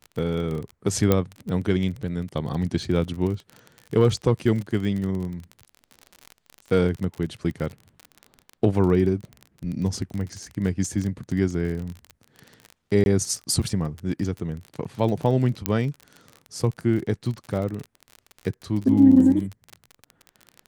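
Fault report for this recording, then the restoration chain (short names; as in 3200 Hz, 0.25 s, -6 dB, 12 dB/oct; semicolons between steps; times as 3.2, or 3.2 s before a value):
crackle 34/s -29 dBFS
1.12 pop -6 dBFS
13.04–13.06 gap 21 ms
15.66 pop -5 dBFS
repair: de-click; interpolate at 13.04, 21 ms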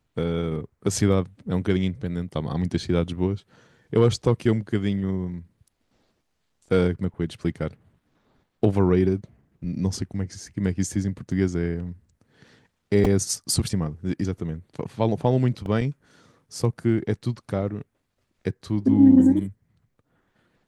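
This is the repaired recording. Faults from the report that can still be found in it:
1.12 pop
15.66 pop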